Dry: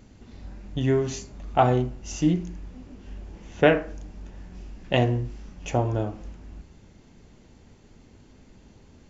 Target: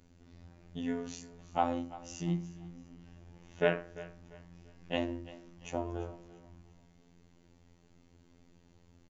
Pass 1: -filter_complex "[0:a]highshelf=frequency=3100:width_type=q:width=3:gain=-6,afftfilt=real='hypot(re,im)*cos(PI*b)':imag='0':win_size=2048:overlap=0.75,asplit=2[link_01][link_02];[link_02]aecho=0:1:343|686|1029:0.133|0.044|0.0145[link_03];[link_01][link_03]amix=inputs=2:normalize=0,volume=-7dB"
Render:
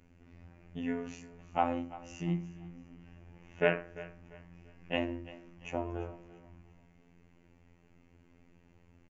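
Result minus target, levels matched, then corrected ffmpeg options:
8,000 Hz band −8.0 dB
-filter_complex "[0:a]afftfilt=real='hypot(re,im)*cos(PI*b)':imag='0':win_size=2048:overlap=0.75,asplit=2[link_01][link_02];[link_02]aecho=0:1:343|686|1029:0.133|0.044|0.0145[link_03];[link_01][link_03]amix=inputs=2:normalize=0,volume=-7dB"

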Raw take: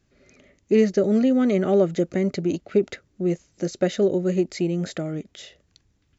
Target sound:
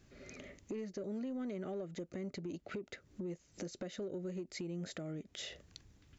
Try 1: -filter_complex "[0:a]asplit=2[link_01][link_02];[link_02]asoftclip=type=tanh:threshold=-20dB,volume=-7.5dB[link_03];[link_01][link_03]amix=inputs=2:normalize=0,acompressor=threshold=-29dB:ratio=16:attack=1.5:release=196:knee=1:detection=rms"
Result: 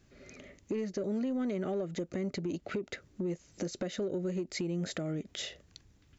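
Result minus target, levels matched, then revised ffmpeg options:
downward compressor: peak gain reduction −7.5 dB
-filter_complex "[0:a]asplit=2[link_01][link_02];[link_02]asoftclip=type=tanh:threshold=-20dB,volume=-7.5dB[link_03];[link_01][link_03]amix=inputs=2:normalize=0,acompressor=threshold=-37dB:ratio=16:attack=1.5:release=196:knee=1:detection=rms"

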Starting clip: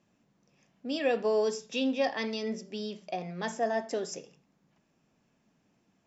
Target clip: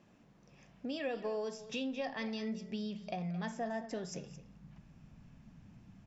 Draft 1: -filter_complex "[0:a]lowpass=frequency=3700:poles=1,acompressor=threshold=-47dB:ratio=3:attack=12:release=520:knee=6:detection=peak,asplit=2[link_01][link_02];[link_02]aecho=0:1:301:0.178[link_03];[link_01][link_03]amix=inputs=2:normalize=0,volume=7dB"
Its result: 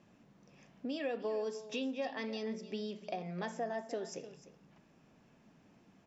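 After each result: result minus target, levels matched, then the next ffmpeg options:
echo 82 ms late; 125 Hz band −5.5 dB
-filter_complex "[0:a]lowpass=frequency=3700:poles=1,acompressor=threshold=-47dB:ratio=3:attack=12:release=520:knee=6:detection=peak,asplit=2[link_01][link_02];[link_02]aecho=0:1:219:0.178[link_03];[link_01][link_03]amix=inputs=2:normalize=0,volume=7dB"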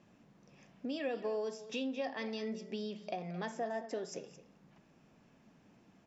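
125 Hz band −5.5 dB
-filter_complex "[0:a]lowpass=frequency=3700:poles=1,asubboost=boost=11.5:cutoff=120,acompressor=threshold=-47dB:ratio=3:attack=12:release=520:knee=6:detection=peak,asplit=2[link_01][link_02];[link_02]aecho=0:1:219:0.178[link_03];[link_01][link_03]amix=inputs=2:normalize=0,volume=7dB"

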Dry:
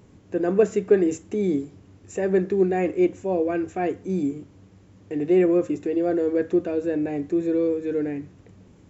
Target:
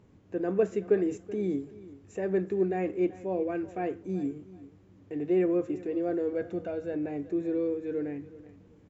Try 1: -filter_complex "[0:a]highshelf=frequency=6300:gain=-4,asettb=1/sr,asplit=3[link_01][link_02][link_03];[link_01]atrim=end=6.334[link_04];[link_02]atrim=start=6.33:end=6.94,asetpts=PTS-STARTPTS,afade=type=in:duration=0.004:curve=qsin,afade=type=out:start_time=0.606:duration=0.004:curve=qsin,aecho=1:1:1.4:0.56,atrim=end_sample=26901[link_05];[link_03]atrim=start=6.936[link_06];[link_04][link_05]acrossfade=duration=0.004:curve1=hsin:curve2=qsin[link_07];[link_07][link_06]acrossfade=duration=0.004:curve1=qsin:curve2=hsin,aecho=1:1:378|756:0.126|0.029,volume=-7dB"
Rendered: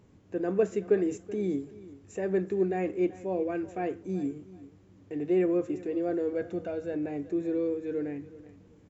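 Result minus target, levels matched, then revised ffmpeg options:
8,000 Hz band +4.5 dB
-filter_complex "[0:a]highshelf=frequency=6300:gain=-12,asettb=1/sr,asplit=3[link_01][link_02][link_03];[link_01]atrim=end=6.334[link_04];[link_02]atrim=start=6.33:end=6.94,asetpts=PTS-STARTPTS,afade=type=in:duration=0.004:curve=qsin,afade=type=out:start_time=0.606:duration=0.004:curve=qsin,aecho=1:1:1.4:0.56,atrim=end_sample=26901[link_05];[link_03]atrim=start=6.936[link_06];[link_04][link_05]acrossfade=duration=0.004:curve1=hsin:curve2=qsin[link_07];[link_07][link_06]acrossfade=duration=0.004:curve1=qsin:curve2=hsin,aecho=1:1:378|756:0.126|0.029,volume=-7dB"

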